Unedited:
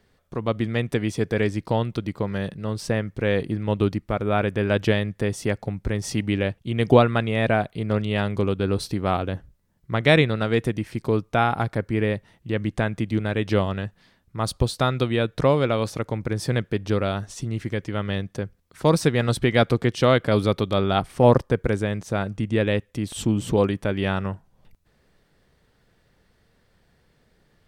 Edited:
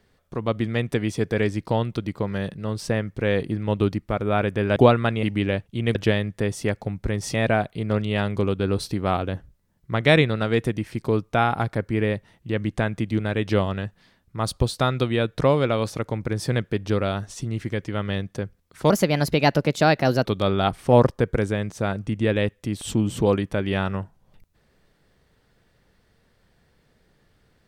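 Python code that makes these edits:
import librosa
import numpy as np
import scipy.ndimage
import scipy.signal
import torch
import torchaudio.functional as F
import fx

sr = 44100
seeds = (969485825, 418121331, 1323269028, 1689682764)

y = fx.edit(x, sr, fx.swap(start_s=4.76, length_s=1.39, other_s=6.87, other_length_s=0.47),
    fx.speed_span(start_s=18.9, length_s=1.66, speed=1.23), tone=tone)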